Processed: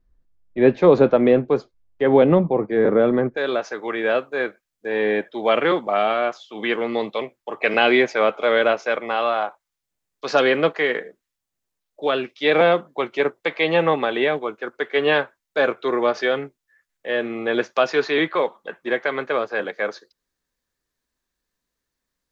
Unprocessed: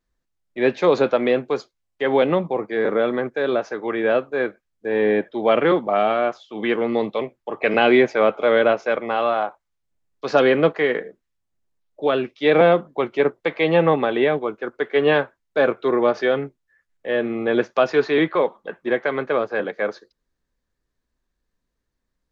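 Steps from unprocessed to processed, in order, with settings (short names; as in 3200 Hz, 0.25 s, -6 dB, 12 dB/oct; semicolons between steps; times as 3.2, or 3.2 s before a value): tilt -3 dB/oct, from 3.36 s +2 dB/oct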